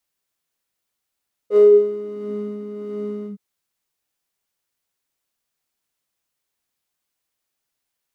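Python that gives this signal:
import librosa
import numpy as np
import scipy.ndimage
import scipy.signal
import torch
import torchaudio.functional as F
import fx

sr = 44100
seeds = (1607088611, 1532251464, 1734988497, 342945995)

y = fx.sub_patch_tremolo(sr, seeds[0], note=68, wave='square', wave2='saw', interval_st=-12, detune_cents=12, level2_db=-9.0, sub_db=-6, noise_db=-6.0, kind='bandpass', cutoff_hz=180.0, q=11.0, env_oct=1.5, env_decay_s=0.7, env_sustain_pct=40, attack_ms=61.0, decay_s=0.14, sustain_db=-9.5, release_s=0.11, note_s=1.76, lfo_hz=1.5, tremolo_db=6)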